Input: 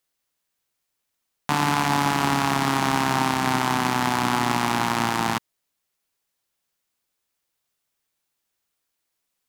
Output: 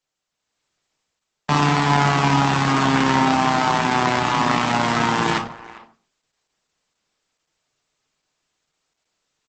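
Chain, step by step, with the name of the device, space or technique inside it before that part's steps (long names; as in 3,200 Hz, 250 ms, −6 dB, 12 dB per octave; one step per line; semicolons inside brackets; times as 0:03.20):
parametric band 9,700 Hz −3.5 dB 1.2 octaves
speakerphone in a meeting room (convolution reverb RT60 0.40 s, pre-delay 3 ms, DRR 1.5 dB; far-end echo of a speakerphone 400 ms, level −17 dB; automatic gain control gain up to 8.5 dB; level −1 dB; Opus 12 kbit/s 48,000 Hz)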